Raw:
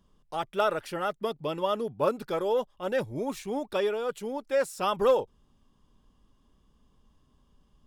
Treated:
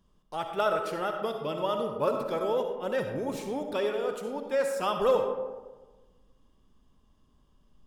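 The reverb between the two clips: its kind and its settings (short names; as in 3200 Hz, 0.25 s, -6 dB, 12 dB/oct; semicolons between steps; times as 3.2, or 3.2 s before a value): digital reverb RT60 1.3 s, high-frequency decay 0.4×, pre-delay 25 ms, DRR 4.5 dB; gain -2 dB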